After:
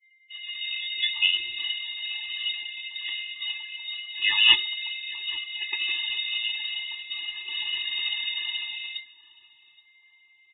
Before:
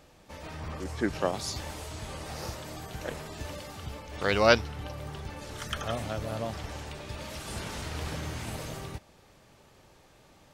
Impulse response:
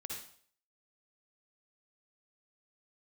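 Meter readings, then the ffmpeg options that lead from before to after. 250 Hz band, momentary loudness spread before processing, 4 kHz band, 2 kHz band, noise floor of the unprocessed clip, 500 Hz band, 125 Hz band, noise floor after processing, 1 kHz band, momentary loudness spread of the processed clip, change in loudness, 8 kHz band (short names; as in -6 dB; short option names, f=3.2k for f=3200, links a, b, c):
under -20 dB, 13 LU, +16.5 dB, +8.0 dB, -59 dBFS, under -30 dB, under -25 dB, -60 dBFS, -12.0 dB, 12 LU, +7.0 dB, under -40 dB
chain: -filter_complex "[0:a]bandreject=f=429.3:t=h:w=4,bandreject=f=858.6:t=h:w=4,bandreject=f=1.2879k:t=h:w=4,bandreject=f=1.7172k:t=h:w=4,bandreject=f=2.1465k:t=h:w=4,bandreject=f=2.5758k:t=h:w=4,bandreject=f=3.0051k:t=h:w=4,bandreject=f=3.4344k:t=h:w=4,bandreject=f=3.8637k:t=h:w=4,bandreject=f=4.293k:t=h:w=4,bandreject=f=4.7223k:t=h:w=4,bandreject=f=5.1516k:t=h:w=4,bandreject=f=5.5809k:t=h:w=4,bandreject=f=6.0102k:t=h:w=4,bandreject=f=6.4395k:t=h:w=4,bandreject=f=6.8688k:t=h:w=4,bandreject=f=7.2981k:t=h:w=4,bandreject=f=7.7274k:t=h:w=4,bandreject=f=8.1567k:t=h:w=4,bandreject=f=8.586k:t=h:w=4,bandreject=f=9.0153k:t=h:w=4,bandreject=f=9.4446k:t=h:w=4,bandreject=f=9.8739k:t=h:w=4,bandreject=f=10.3032k:t=h:w=4,bandreject=f=10.7325k:t=h:w=4,bandreject=f=11.1618k:t=h:w=4,bandreject=f=11.5911k:t=h:w=4,bandreject=f=12.0204k:t=h:w=4,bandreject=f=12.4497k:t=h:w=4,bandreject=f=12.879k:t=h:w=4,bandreject=f=13.3083k:t=h:w=4,bandreject=f=13.7376k:t=h:w=4,bandreject=f=14.1669k:t=h:w=4,bandreject=f=14.5962k:t=h:w=4,bandreject=f=15.0255k:t=h:w=4,bandreject=f=15.4548k:t=h:w=4,bandreject=f=15.8841k:t=h:w=4,aeval=exprs='val(0)+0.00501*sin(2*PI*1700*n/s)':c=same,equalizer=f=950:t=o:w=0.85:g=12,afftdn=nr=21:nf=-45,bandreject=f=2.5k:w=7.8,lowpass=f=3.2k:t=q:w=0.5098,lowpass=f=3.2k:t=q:w=0.6013,lowpass=f=3.2k:t=q:w=0.9,lowpass=f=3.2k:t=q:w=2.563,afreqshift=-3800,aecho=1:1:2.4:0.68,agate=range=-33dB:threshold=-31dB:ratio=3:detection=peak,asplit=2[a][b];[b]adelay=824,lowpass=f=2.3k:p=1,volume=-17dB,asplit=2[c][d];[d]adelay=824,lowpass=f=2.3k:p=1,volume=0.42,asplit=2[e][f];[f]adelay=824,lowpass=f=2.3k:p=1,volume=0.42,asplit=2[g][h];[h]adelay=824,lowpass=f=2.3k:p=1,volume=0.42[i];[c][e][g][i]amix=inputs=4:normalize=0[j];[a][j]amix=inputs=2:normalize=0,flanger=delay=2.4:depth=7.1:regen=-48:speed=0.38:shape=triangular,adynamicequalizer=threshold=0.00631:dfrequency=2400:dqfactor=2.6:tfrequency=2400:tqfactor=2.6:attack=5:release=100:ratio=0.375:range=3.5:mode=boostabove:tftype=bell,afftfilt=real='re*eq(mod(floor(b*sr/1024/430),2),0)':imag='im*eq(mod(floor(b*sr/1024/430),2),0)':win_size=1024:overlap=0.75,volume=3.5dB"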